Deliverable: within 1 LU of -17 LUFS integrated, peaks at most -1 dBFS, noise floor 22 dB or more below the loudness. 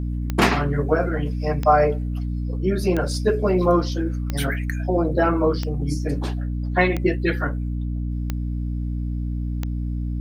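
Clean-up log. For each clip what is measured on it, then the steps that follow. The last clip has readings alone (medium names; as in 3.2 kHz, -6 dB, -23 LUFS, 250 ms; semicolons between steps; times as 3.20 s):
clicks found 8; hum 60 Hz; highest harmonic 300 Hz; hum level -23 dBFS; loudness -23.0 LUFS; peak level -3.0 dBFS; loudness target -17.0 LUFS
-> de-click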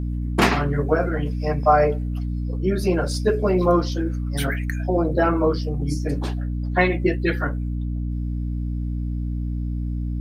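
clicks found 0; hum 60 Hz; highest harmonic 300 Hz; hum level -23 dBFS
-> de-hum 60 Hz, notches 5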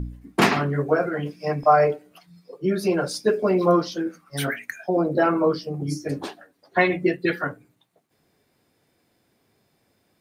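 hum not found; loudness -23.0 LUFS; peak level -4.0 dBFS; loudness target -17.0 LUFS
-> trim +6 dB; peak limiter -1 dBFS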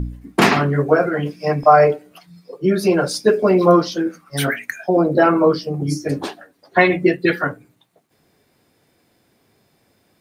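loudness -17.5 LUFS; peak level -1.0 dBFS; noise floor -62 dBFS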